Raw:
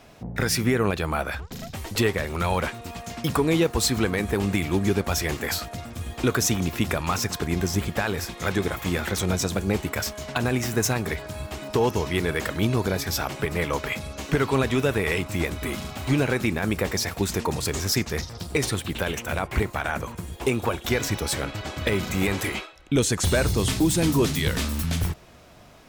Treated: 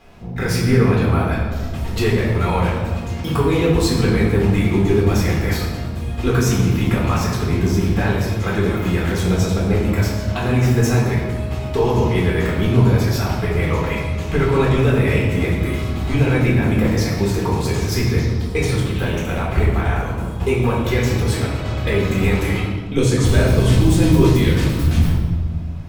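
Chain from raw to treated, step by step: tone controls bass +6 dB, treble -5 dB; reverb RT60 1.6 s, pre-delay 4 ms, DRR -5 dB; gain -3.5 dB

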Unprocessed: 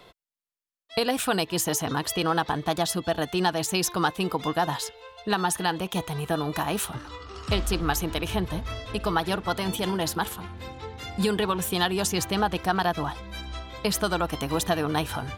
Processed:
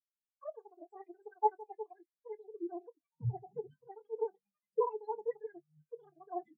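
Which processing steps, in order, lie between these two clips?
HPF 72 Hz 6 dB/oct; limiter -19.5 dBFS, peak gain reduction 9 dB; envelope flanger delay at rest 12 ms, full sweep at -24.5 dBFS; reverb, pre-delay 60 ms, DRR 11.5 dB; speed mistake 33 rpm record played at 78 rpm; spectral expander 4:1; gain +2.5 dB

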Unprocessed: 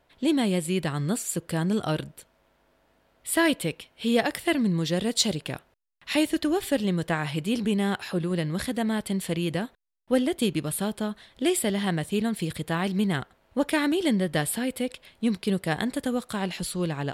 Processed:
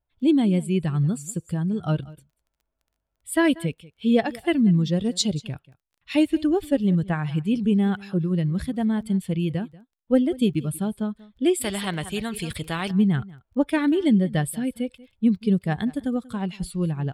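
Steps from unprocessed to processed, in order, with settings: per-bin expansion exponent 1.5; LPF 11000 Hz 12 dB/oct; low shelf 390 Hz +10 dB; 1.09–1.86 compressor, threshold -22 dBFS, peak gain reduction 6 dB; crackle 14/s -50 dBFS; echo 0.187 s -21 dB; 11.61–12.91 spectral compressor 2:1

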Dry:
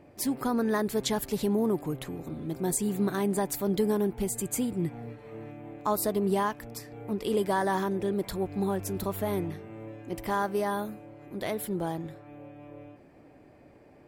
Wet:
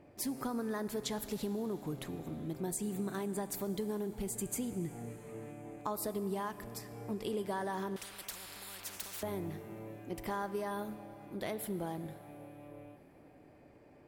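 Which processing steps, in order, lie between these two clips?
compressor, threshold -29 dBFS, peak gain reduction 8 dB; Schroeder reverb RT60 3.7 s, combs from 26 ms, DRR 13 dB; 7.96–9.23 spectral compressor 10:1; gain -4.5 dB

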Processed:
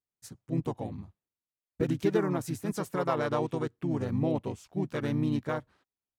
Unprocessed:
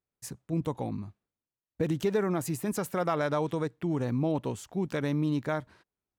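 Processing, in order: harmoniser -4 st -3 dB; upward expander 1.5:1, over -42 dBFS

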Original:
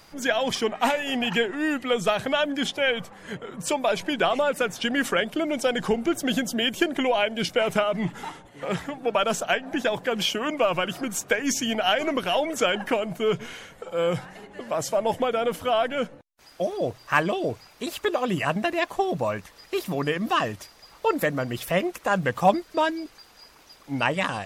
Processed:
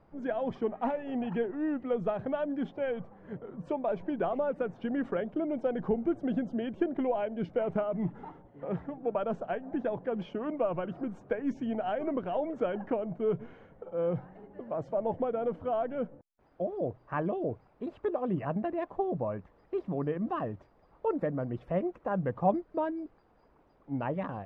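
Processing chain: Bessel low-pass 620 Hz, order 2; gain -4 dB

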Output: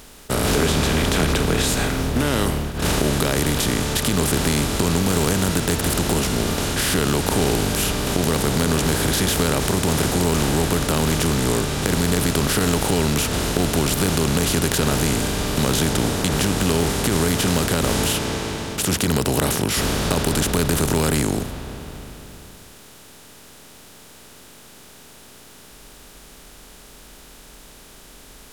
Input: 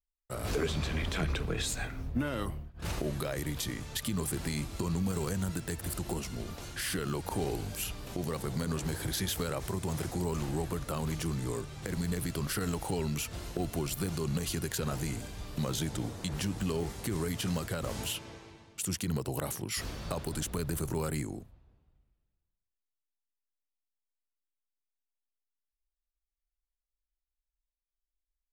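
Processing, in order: per-bin compression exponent 0.4; gain +7 dB

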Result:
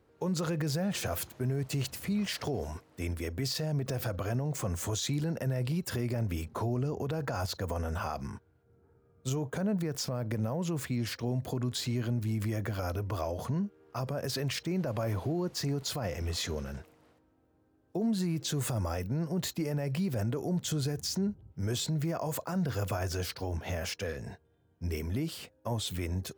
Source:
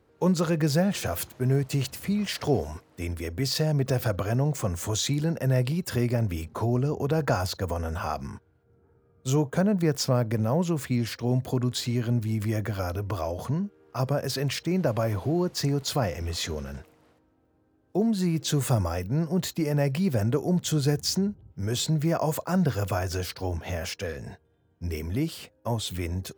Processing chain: limiter -21.5 dBFS, peak gain reduction 10.5 dB; gain -2.5 dB

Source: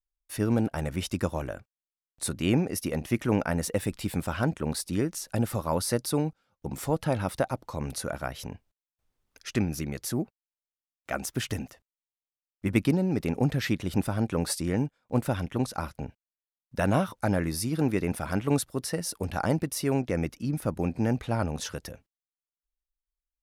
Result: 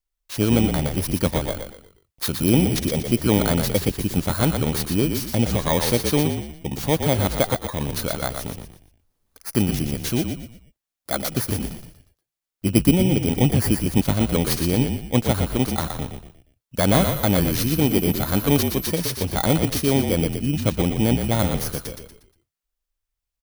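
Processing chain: FFT order left unsorted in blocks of 16 samples; frequency-shifting echo 0.119 s, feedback 37%, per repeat -44 Hz, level -6 dB; 16.91–18.86 whine 12000 Hz -40 dBFS; gain +6.5 dB

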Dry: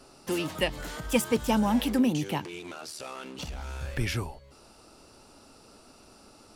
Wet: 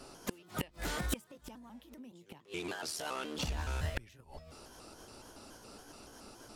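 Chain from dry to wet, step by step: trilling pitch shifter +2.5 st, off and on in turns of 0.141 s; flipped gate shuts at -22 dBFS, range -29 dB; gain +1.5 dB

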